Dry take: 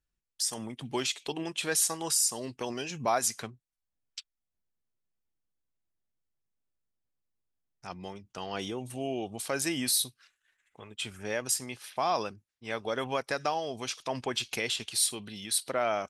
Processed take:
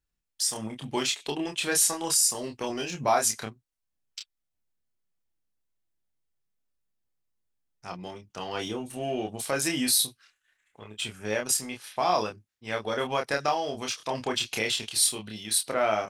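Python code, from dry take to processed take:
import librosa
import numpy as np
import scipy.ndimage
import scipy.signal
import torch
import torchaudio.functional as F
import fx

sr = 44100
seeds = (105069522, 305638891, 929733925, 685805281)

p1 = fx.doubler(x, sr, ms=28.0, db=-3.5)
p2 = np.sign(p1) * np.maximum(np.abs(p1) - 10.0 ** (-39.5 / 20.0), 0.0)
y = p1 + (p2 * 10.0 ** (-9.0 / 20.0))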